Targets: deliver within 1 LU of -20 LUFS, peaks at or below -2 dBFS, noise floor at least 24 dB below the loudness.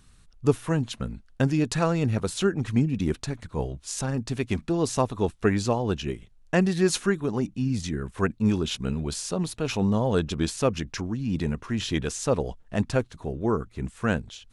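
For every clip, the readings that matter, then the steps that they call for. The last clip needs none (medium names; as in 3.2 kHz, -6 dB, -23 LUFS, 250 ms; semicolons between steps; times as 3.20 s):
loudness -27.0 LUFS; peak level -6.5 dBFS; loudness target -20.0 LUFS
-> trim +7 dB; peak limiter -2 dBFS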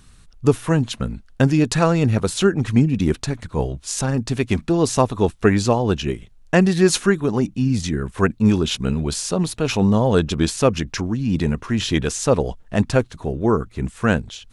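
loudness -20.0 LUFS; peak level -2.0 dBFS; noise floor -49 dBFS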